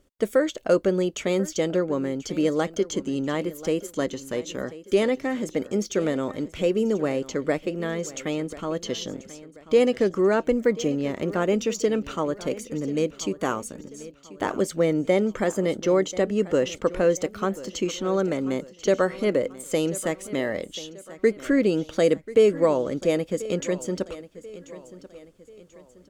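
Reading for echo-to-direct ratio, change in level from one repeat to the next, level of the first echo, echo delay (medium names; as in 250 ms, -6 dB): -16.0 dB, -7.5 dB, -17.0 dB, 1037 ms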